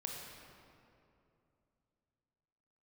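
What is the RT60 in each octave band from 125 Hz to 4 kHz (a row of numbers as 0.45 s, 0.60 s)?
3.4 s, 3.3 s, 2.9 s, 2.5 s, 2.0 s, 1.6 s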